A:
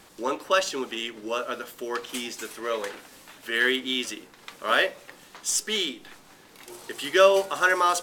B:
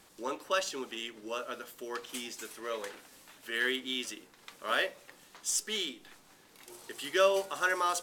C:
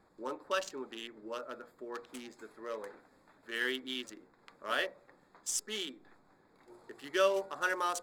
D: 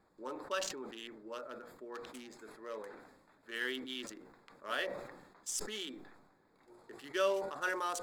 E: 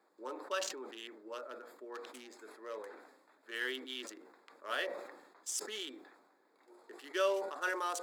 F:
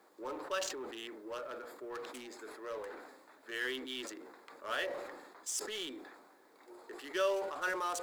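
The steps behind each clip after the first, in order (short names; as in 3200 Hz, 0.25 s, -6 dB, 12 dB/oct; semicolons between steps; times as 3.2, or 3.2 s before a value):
bell 11000 Hz +3.5 dB 2.1 oct; gain -8.5 dB
Wiener smoothing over 15 samples; gain -2.5 dB
sustainer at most 55 dB/s; gain -4 dB
HPF 290 Hz 24 dB/oct
G.711 law mismatch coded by mu; gain -1.5 dB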